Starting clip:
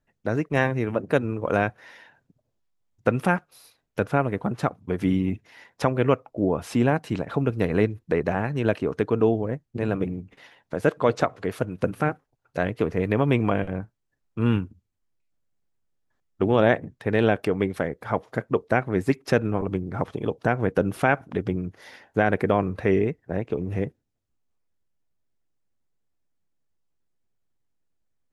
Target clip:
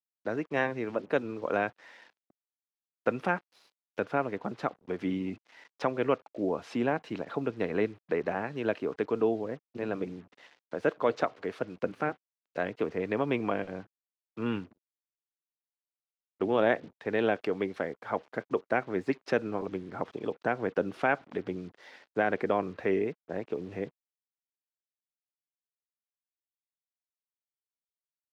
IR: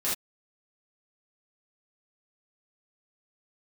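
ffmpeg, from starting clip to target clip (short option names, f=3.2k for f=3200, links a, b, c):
-filter_complex "[0:a]acrusher=bits=7:mix=0:aa=0.5,acrossover=split=210 5800:gain=0.178 1 0.0891[a][b][c];[a][b][c]amix=inputs=3:normalize=0,volume=-5.5dB"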